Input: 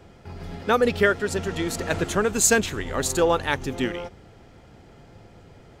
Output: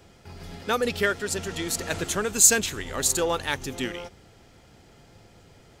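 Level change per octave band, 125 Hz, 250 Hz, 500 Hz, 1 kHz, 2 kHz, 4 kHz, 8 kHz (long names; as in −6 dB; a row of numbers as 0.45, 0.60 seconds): −5.5, −5.5, −5.5, −4.5, −3.0, +1.5, +4.0 decibels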